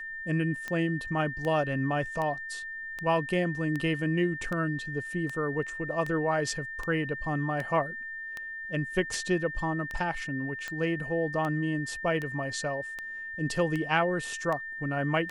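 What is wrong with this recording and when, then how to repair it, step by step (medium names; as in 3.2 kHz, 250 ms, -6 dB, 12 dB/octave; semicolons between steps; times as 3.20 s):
tick 78 rpm -21 dBFS
whine 1.8 kHz -36 dBFS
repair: de-click; band-stop 1.8 kHz, Q 30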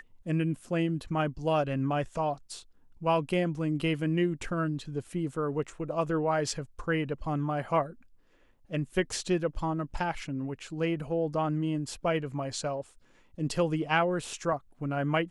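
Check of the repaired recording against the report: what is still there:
nothing left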